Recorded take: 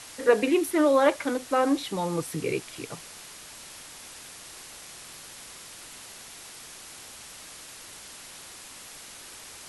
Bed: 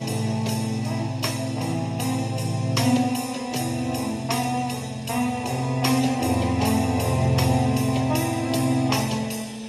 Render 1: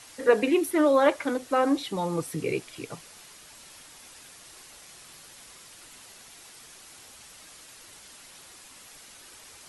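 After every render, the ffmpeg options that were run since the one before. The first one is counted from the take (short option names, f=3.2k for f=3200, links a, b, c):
-af "afftdn=nr=6:nf=-45"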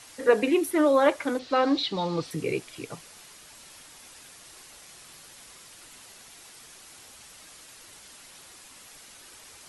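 -filter_complex "[0:a]asettb=1/sr,asplit=3[a][b][c];[a]atrim=end=1.394[d];[b]atrim=start=1.39:end=2.31,asetpts=PTS-STARTPTS,afade=t=in:d=0.004:c=qsin,afade=t=out:st=0.916:d=0.004:c=qsin,lowpass=f=4.3k:t=q:w=3.3[e];[c]atrim=start=2.306[f];[d][e]acrossfade=d=0.004:c1=hsin:c2=qsin[g];[g][f]acrossfade=d=0.004:c1=qsin:c2=hsin"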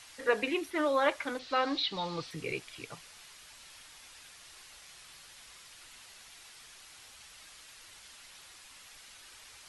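-filter_complex "[0:a]acrossover=split=5100[a][b];[b]acompressor=threshold=-56dB:ratio=4:attack=1:release=60[c];[a][c]amix=inputs=2:normalize=0,equalizer=f=280:w=0.36:g=-11"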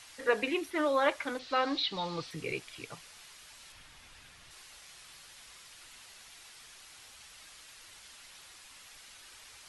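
-filter_complex "[0:a]asettb=1/sr,asplit=3[a][b][c];[a]atrim=end=3.724[d];[b]atrim=start=3.72:end=4.51,asetpts=PTS-STARTPTS,afade=t=in:d=0.004:c=qsin,afade=t=out:st=0.786:d=0.004:c=qsin,bass=f=250:g=9,treble=f=4k:g=-6[e];[c]atrim=start=4.506[f];[d][e]acrossfade=d=0.004:c1=hsin:c2=qsin[g];[g][f]acrossfade=d=0.004:c1=qsin:c2=hsin"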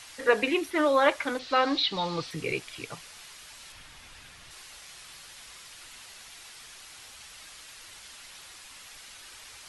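-af "volume=5.5dB"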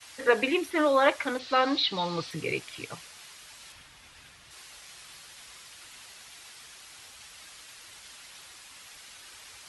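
-af "highpass=47,agate=range=-33dB:threshold=-46dB:ratio=3:detection=peak"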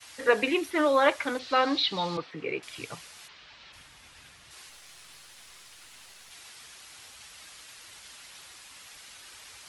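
-filter_complex "[0:a]asettb=1/sr,asplit=3[a][b][c];[a]atrim=end=2.174[d];[b]atrim=start=2.17:end=2.63,asetpts=PTS-STARTPTS,afade=t=in:d=0.004:c=qsin,afade=t=out:st=0.456:d=0.004:c=qsin,highpass=230,lowpass=2.3k[e];[c]atrim=start=2.626[f];[d][e]acrossfade=d=0.004:c1=hsin:c2=qsin[g];[g][f]acrossfade=d=0.004:c1=qsin:c2=hsin,asplit=3[h][i][j];[h]afade=t=out:st=3.27:d=0.02[k];[i]lowpass=f=4.5k:w=0.5412,lowpass=f=4.5k:w=1.3066,afade=t=in:st=3.27:d=0.02,afade=t=out:st=3.72:d=0.02[l];[j]afade=t=in:st=3.72:d=0.02[m];[k][l][m]amix=inputs=3:normalize=0,asettb=1/sr,asplit=3[n][o][p];[n]atrim=end=4.694[q];[o]atrim=start=4.69:end=6.31,asetpts=PTS-STARTPTS,afade=t=in:d=0.004:c=qsin,afade=t=out:st=1.616:d=0.004:c=qsin,aeval=exprs='if(lt(val(0),0),0.447*val(0),val(0))':c=same[r];[p]atrim=start=6.306[s];[q][r]acrossfade=d=0.004:c1=hsin:c2=qsin[t];[t][s]acrossfade=d=0.004:c1=qsin:c2=hsin"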